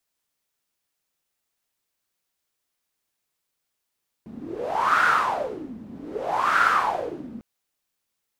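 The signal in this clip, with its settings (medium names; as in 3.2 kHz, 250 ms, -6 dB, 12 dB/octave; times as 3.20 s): wind-like swept noise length 3.15 s, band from 220 Hz, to 1.4 kHz, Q 7.8, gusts 2, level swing 19 dB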